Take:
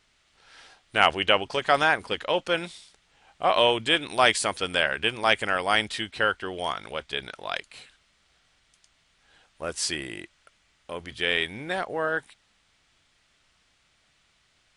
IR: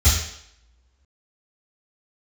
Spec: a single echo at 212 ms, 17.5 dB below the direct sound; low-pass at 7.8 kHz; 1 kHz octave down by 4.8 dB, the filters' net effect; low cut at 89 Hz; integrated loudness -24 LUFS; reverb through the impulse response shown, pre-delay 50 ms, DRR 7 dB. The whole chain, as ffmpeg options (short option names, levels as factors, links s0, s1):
-filter_complex "[0:a]highpass=89,lowpass=7800,equalizer=f=1000:t=o:g=-7,aecho=1:1:212:0.133,asplit=2[s0][s1];[1:a]atrim=start_sample=2205,adelay=50[s2];[s1][s2]afir=irnorm=-1:irlink=0,volume=0.0668[s3];[s0][s3]amix=inputs=2:normalize=0,volume=1.26"